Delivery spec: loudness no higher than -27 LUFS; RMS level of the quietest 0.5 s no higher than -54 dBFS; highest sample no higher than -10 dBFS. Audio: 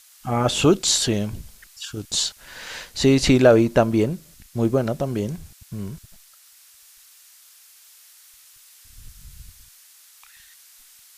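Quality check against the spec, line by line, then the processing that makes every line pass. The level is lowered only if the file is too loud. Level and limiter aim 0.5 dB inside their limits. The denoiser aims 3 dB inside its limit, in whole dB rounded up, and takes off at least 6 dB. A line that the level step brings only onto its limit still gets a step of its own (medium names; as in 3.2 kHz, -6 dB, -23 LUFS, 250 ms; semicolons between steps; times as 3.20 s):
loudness -20.0 LUFS: fail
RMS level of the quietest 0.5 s -52 dBFS: fail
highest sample -3.5 dBFS: fail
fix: trim -7.5 dB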